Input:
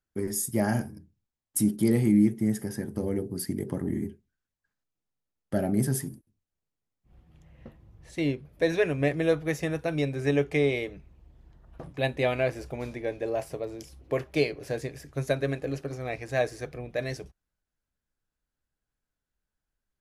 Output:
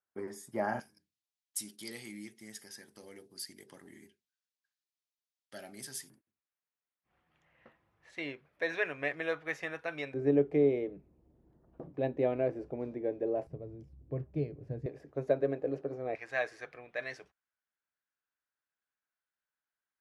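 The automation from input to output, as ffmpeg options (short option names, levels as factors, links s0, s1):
-af "asetnsamples=n=441:p=0,asendcmd='0.8 bandpass f 4300;6.1 bandpass f 1600;10.14 bandpass f 340;13.47 bandpass f 120;14.86 bandpass f 470;16.15 bandpass f 1600',bandpass=f=980:t=q:w=1.1:csg=0"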